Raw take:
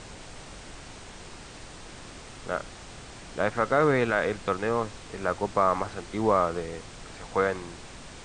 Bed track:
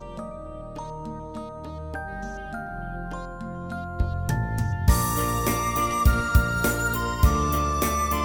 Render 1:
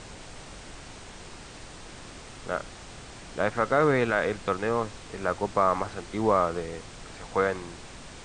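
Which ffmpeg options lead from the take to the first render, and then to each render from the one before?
-af anull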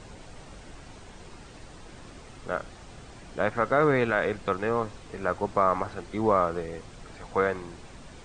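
-af "afftdn=nr=7:nf=-45"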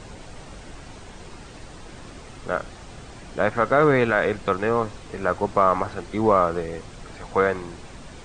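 -af "acontrast=27"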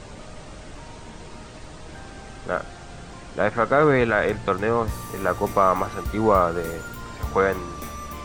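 -filter_complex "[1:a]volume=-12dB[a];[0:a][a]amix=inputs=2:normalize=0"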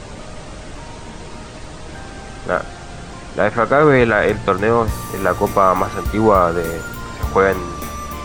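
-af "volume=7dB,alimiter=limit=-1dB:level=0:latency=1"

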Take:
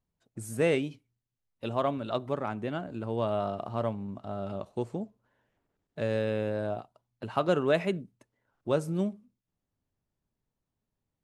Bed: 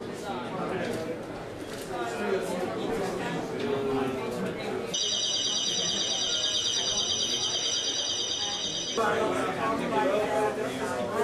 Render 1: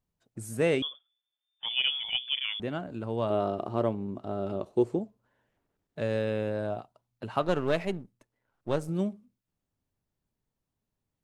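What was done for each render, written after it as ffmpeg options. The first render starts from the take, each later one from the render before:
-filter_complex "[0:a]asettb=1/sr,asplit=3[a][b][c];[a]atrim=end=0.824[d];[b]atrim=start=0.82:end=2.6,asetpts=PTS-STARTPTS,afade=t=in:d=0.004:c=qsin,afade=t=out:st=1.776:d=0.004:c=qsin,lowpass=f=3.1k:t=q:w=0.5098,lowpass=f=3.1k:t=q:w=0.6013,lowpass=f=3.1k:t=q:w=0.9,lowpass=f=3.1k:t=q:w=2.563,afreqshift=-3600[e];[c]atrim=start=2.596[f];[d][e]acrossfade=d=0.004:c1=hsin:c2=qsin[g];[g][f]acrossfade=d=0.004:c1=qsin:c2=hsin,asettb=1/sr,asplit=3[h][i][j];[h]atrim=end=3.304[k];[i]atrim=start=3.3:end=4.99,asetpts=PTS-STARTPTS,afade=t=in:d=0.004:c=qsin,afade=t=out:st=1.686:d=0.004:c=qsin,equalizer=f=360:t=o:w=0.77:g=10.5[l];[j]atrim=start=4.986[m];[k][l]acrossfade=d=0.004:c1=hsin:c2=qsin[n];[n][m]acrossfade=d=0.004:c1=qsin:c2=hsin,asettb=1/sr,asplit=3[o][p][q];[o]atrim=end=7.424[r];[p]atrim=start=7.42:end=8.89,asetpts=PTS-STARTPTS,afade=t=in:d=0.004:c=qsin,afade=t=out:st=1.466:d=0.004:c=qsin,aeval=exprs='if(lt(val(0),0),0.447*val(0),val(0))':c=same[s];[q]atrim=start=8.886[t];[r][s]acrossfade=d=0.004:c1=hsin:c2=qsin[u];[u][t]acrossfade=d=0.004:c1=qsin:c2=hsin"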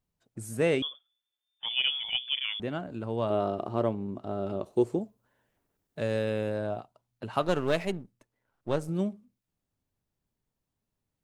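-filter_complex "[0:a]asettb=1/sr,asplit=3[a][b][c];[a]atrim=end=4.654[d];[b]atrim=start=4.65:end=6.59,asetpts=PTS-STARTPTS,afade=t=in:d=0.004:c=qsin,afade=t=out:st=1.936:d=0.004:c=qsin,highshelf=f=7.2k:g=9.5[e];[c]atrim=start=6.586[f];[d][e]acrossfade=d=0.004:c1=hsin:c2=qsin[g];[g][f]acrossfade=d=0.004:c1=qsin:c2=hsin,asettb=1/sr,asplit=3[h][i][j];[h]atrim=end=7.334[k];[i]atrim=start=7.33:end=7.92,asetpts=PTS-STARTPTS,afade=t=in:d=0.004:c=qsin,afade=t=out:st=0.586:d=0.004:c=qsin,highshelf=f=4.8k:g=7[l];[j]atrim=start=7.916[m];[k][l]acrossfade=d=0.004:c1=hsin:c2=qsin[n];[n][m]acrossfade=d=0.004:c1=qsin:c2=hsin"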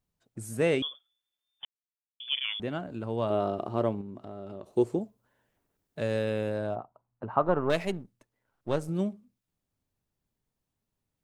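-filter_complex "[0:a]asettb=1/sr,asplit=3[a][b][c];[a]atrim=end=4.014[d];[b]atrim=start=4.01:end=4.77,asetpts=PTS-STARTPTS,afade=t=in:d=0.004:c=qsin,afade=t=out:st=0.756:d=0.004:c=qsin,acompressor=threshold=-40dB:ratio=2.5:attack=3.2:release=140:knee=1:detection=peak[e];[c]atrim=start=4.766[f];[d][e]acrossfade=d=0.004:c1=hsin:c2=qsin[g];[g][f]acrossfade=d=0.004:c1=qsin:c2=hsin,asettb=1/sr,asplit=3[h][i][j];[h]atrim=end=6.754[k];[i]atrim=start=6.75:end=7.7,asetpts=PTS-STARTPTS,afade=t=in:d=0.004:c=qsin,afade=t=out:st=0.946:d=0.004:c=qsin,lowpass=f=1.1k:t=q:w=1.7[l];[j]atrim=start=7.696[m];[k][l]acrossfade=d=0.004:c1=hsin:c2=qsin[n];[n][m]acrossfade=d=0.004:c1=qsin:c2=hsin,asplit=3[o][p][q];[o]atrim=end=1.65,asetpts=PTS-STARTPTS,afade=t=out:st=1.646:d=0.004:c=hsin[r];[p]atrim=start=1.65:end=2.2,asetpts=PTS-STARTPTS,volume=0[s];[q]atrim=start=2.2,asetpts=PTS-STARTPTS,afade=t=in:d=0.004:c=hsin[t];[r][s][t]concat=n=3:v=0:a=1"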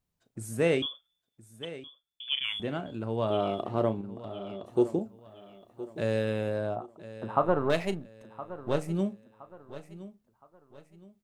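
-filter_complex "[0:a]asplit=2[a][b];[b]adelay=36,volume=-14dB[c];[a][c]amix=inputs=2:normalize=0,aecho=1:1:1017|2034|3051:0.168|0.0588|0.0206"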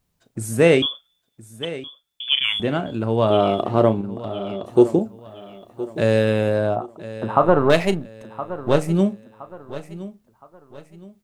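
-af "volume=11dB,alimiter=limit=-2dB:level=0:latency=1"

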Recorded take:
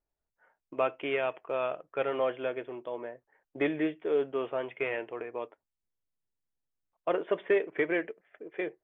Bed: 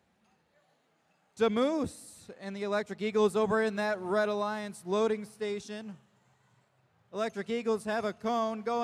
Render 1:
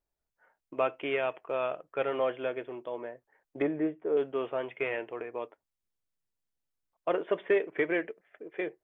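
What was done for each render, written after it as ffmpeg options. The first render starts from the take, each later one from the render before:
-filter_complex "[0:a]asettb=1/sr,asplit=3[a][b][c];[a]atrim=end=3.624[d];[b]atrim=start=3.62:end=4.17,asetpts=PTS-STARTPTS,afade=t=in:d=0.004:c=qsin,afade=t=out:st=0.546:d=0.004:c=qsin,lowpass=1.2k[e];[c]atrim=start=4.166[f];[d][e]acrossfade=d=0.004:c1=hsin:c2=qsin[g];[g][f]acrossfade=d=0.004:c1=qsin:c2=hsin"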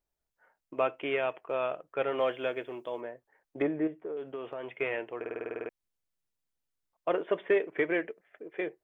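-filter_complex "[0:a]asettb=1/sr,asplit=3[a][b][c];[a]atrim=end=2.184[d];[b]atrim=start=2.18:end=3.01,asetpts=PTS-STARTPTS,afade=t=in:d=0.004:c=qsin,afade=t=out:st=0.826:d=0.004:c=qsin,highshelf=f=3.3k:g=11[e];[c]atrim=start=3.006[f];[d][e]acrossfade=d=0.004:c1=hsin:c2=qsin[g];[g][f]acrossfade=d=0.004:c1=qsin:c2=hsin,asettb=1/sr,asplit=3[h][i][j];[h]atrim=end=3.874[k];[i]atrim=start=3.87:end=4.69,asetpts=PTS-STARTPTS,afade=t=in:d=0.004:c=qsin,afade=t=out:st=0.816:d=0.004:c=qsin,acompressor=threshold=-34dB:ratio=6:attack=3.2:release=140:knee=1:detection=peak[l];[j]atrim=start=4.686[m];[k][l]acrossfade=d=0.004:c1=hsin:c2=qsin[n];[n][m]acrossfade=d=0.004:c1=qsin:c2=hsin,asplit=11[o][p][q][r][s][t][u][v][w][x][y];[o]atrim=end=5.242[z];[p]atrim=start=5.188:end=5.242[aa];[q]atrim=start=5.188:end=5.242[ab];[r]atrim=start=5.188:end=5.242[ac];[s]atrim=start=5.188:end=5.242[ad];[t]atrim=start=5.188:end=5.242[ae];[u]atrim=start=5.188:end=5.242[af];[v]atrim=start=5.188:end=5.242[ag];[w]atrim=start=5.188:end=5.242[ah];[x]atrim=start=5.188:end=5.242[ai];[y]atrim=start=5.688[aj];[z][aa]acrossfade=d=0.004:c1=hsin:c2=hsin[ak];[ak][ab]acrossfade=d=0.004:c1=hsin:c2=hsin[al];[al][ac]acrossfade=d=0.004:c1=hsin:c2=hsin[am];[am][ad]acrossfade=d=0.004:c1=hsin:c2=hsin[an];[an][ae]acrossfade=d=0.004:c1=hsin:c2=hsin[ao];[ao][af]acrossfade=d=0.004:c1=hsin:c2=hsin[ap];[ap][ag]acrossfade=d=0.004:c1=hsin:c2=hsin[aq];[aq][ah]acrossfade=d=0.004:c1=hsin:c2=hsin[ar];[ar][ai]acrossfade=d=0.004:c1=hsin:c2=hsin[as];[as][aj]acrossfade=d=0.004:c1=hsin:c2=hsin"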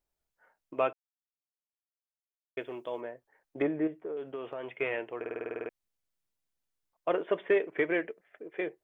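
-filter_complex "[0:a]asplit=3[a][b][c];[a]atrim=end=0.93,asetpts=PTS-STARTPTS,afade=t=out:st=0.926:d=0.004:c=hsin[d];[b]atrim=start=0.93:end=2.57,asetpts=PTS-STARTPTS,volume=0[e];[c]atrim=start=2.57,asetpts=PTS-STARTPTS,afade=t=in:d=0.004:c=hsin[f];[d][e][f]concat=n=3:v=0:a=1"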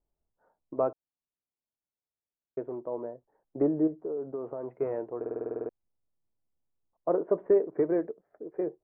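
-af "lowpass=f=1.2k:w=0.5412,lowpass=f=1.2k:w=1.3066,tiltshelf=f=820:g=6"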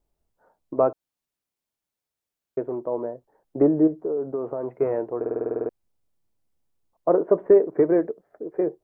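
-af "volume=7.5dB"

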